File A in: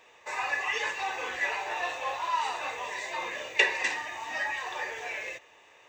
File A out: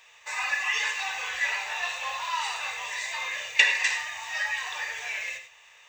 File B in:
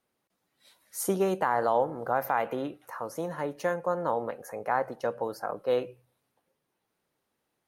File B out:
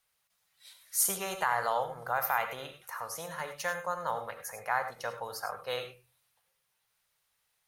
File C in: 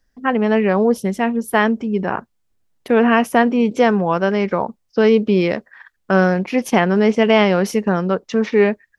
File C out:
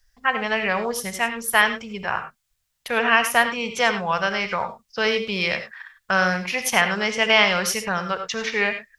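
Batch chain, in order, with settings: amplifier tone stack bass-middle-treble 10-0-10; gated-style reverb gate 120 ms rising, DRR 8 dB; trim +7.5 dB

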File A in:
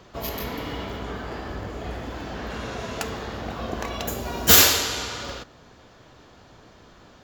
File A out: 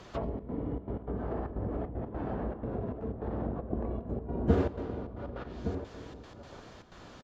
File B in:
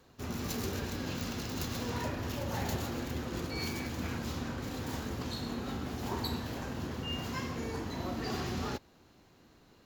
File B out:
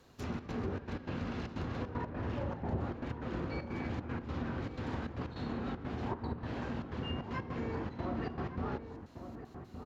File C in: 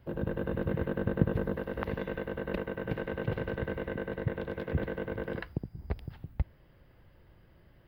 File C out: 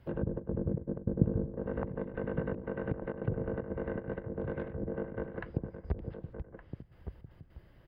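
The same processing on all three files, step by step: low-pass that closes with the level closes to 430 Hz, closed at -28 dBFS; trance gate "xxxx.xxx.x." 154 bpm -12 dB; echo from a far wall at 200 m, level -9 dB

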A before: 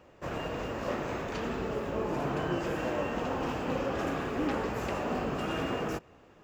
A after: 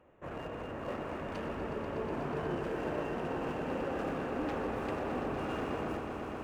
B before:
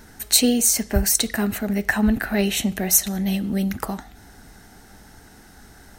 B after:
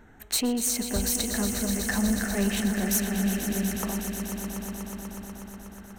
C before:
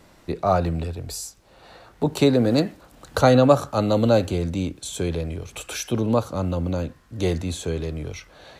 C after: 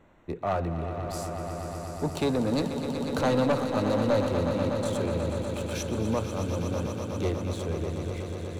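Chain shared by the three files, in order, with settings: local Wiener filter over 9 samples; hum notches 60/120/180 Hz; saturation -14.5 dBFS; echo with a slow build-up 122 ms, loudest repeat 5, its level -10.5 dB; trim -5.5 dB

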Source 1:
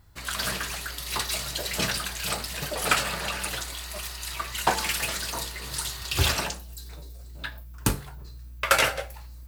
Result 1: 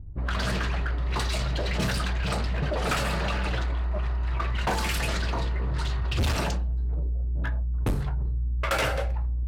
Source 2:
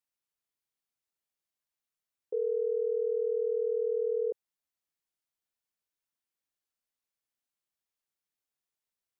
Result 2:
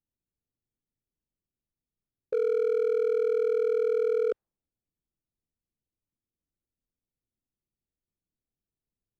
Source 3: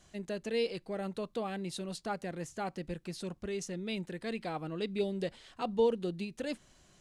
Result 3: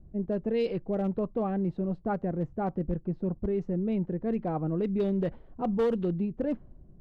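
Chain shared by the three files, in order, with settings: level-controlled noise filter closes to 340 Hz, open at -23.5 dBFS; tilt EQ -2.5 dB/octave; in parallel at -1 dB: compressor with a negative ratio -32 dBFS, ratio -1; on the sum: overload inside the chain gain 19.5 dB; trim -1.5 dB

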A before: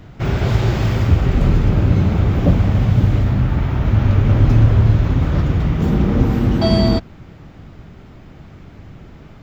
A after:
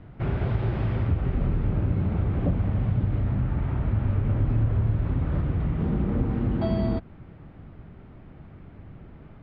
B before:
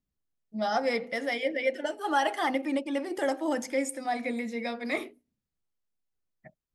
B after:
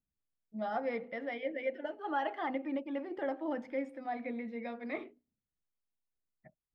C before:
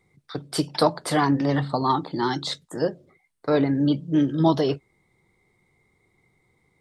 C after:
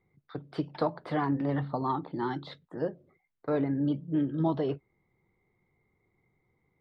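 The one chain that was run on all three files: treble shelf 8.4 kHz -6 dB; compression 2:1, threshold -17 dBFS; distance through air 390 m; trim -6 dB

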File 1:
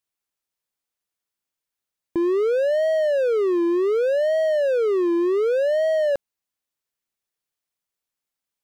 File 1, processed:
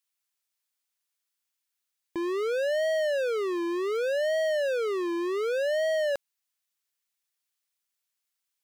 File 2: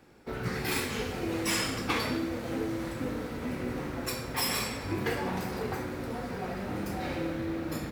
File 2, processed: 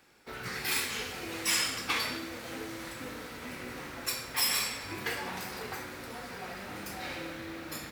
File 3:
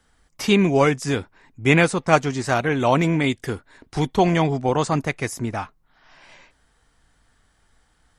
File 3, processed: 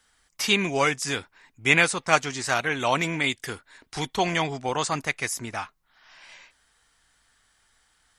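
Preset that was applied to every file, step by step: tilt shelf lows -7.5 dB, about 870 Hz; trim -4 dB

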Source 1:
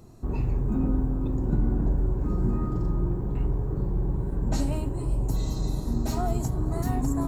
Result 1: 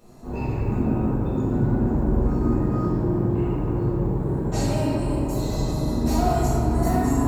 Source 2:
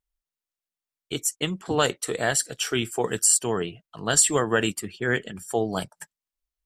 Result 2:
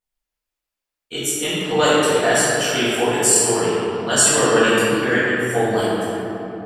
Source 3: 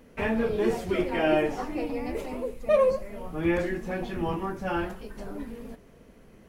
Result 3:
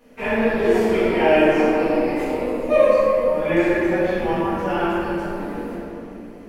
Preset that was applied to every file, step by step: bass shelf 180 Hz -11.5 dB; simulated room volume 160 m³, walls hard, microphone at 1.8 m; trim -3 dB

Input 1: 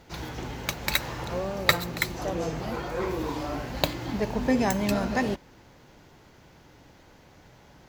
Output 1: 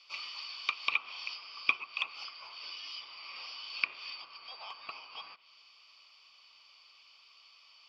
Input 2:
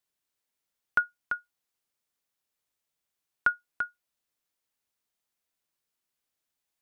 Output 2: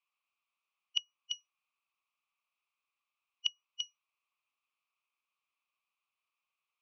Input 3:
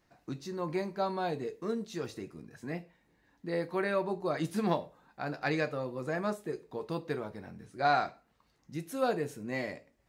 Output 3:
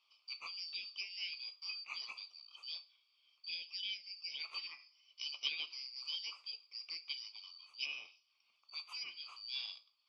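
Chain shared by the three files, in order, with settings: four frequency bands reordered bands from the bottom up 4321; low-pass that closes with the level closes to 1.5 kHz, closed at -24 dBFS; two resonant band-passes 1.7 kHz, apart 1.1 oct; trim +9.5 dB

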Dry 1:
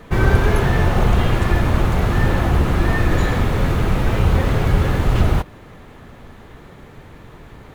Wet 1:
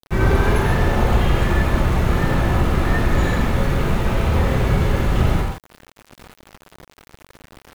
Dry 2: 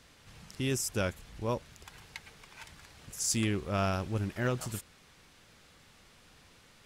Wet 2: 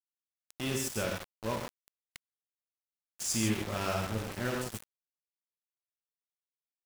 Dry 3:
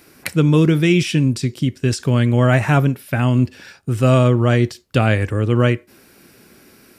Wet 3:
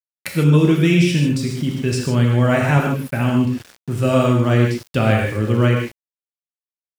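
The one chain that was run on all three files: gated-style reverb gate 180 ms flat, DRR -0.5 dB; small samples zeroed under -31 dBFS; trim -3.5 dB

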